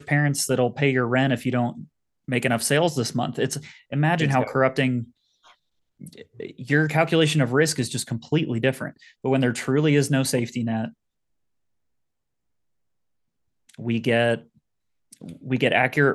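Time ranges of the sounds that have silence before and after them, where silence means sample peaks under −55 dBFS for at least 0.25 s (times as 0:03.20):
0:02.28–0:05.11
0:05.44–0:05.55
0:06.00–0:10.94
0:13.69–0:14.58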